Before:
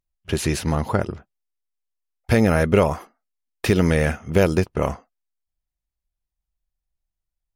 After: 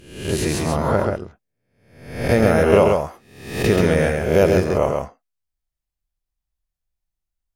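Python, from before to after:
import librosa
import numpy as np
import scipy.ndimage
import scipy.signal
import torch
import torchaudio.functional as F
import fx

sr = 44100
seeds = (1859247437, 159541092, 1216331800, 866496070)

p1 = fx.spec_swells(x, sr, rise_s=0.7)
p2 = fx.dynamic_eq(p1, sr, hz=580.0, q=1.4, threshold_db=-32.0, ratio=4.0, max_db=6)
p3 = p2 + fx.echo_single(p2, sr, ms=134, db=-4.0, dry=0)
y = F.gain(torch.from_numpy(p3), -3.0).numpy()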